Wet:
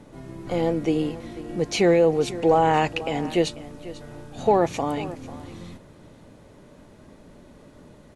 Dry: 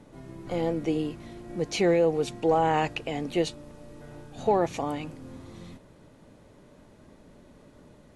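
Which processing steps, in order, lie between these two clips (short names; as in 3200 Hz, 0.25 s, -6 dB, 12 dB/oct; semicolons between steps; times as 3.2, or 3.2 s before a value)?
echo 0.493 s -16.5 dB; gain +4.5 dB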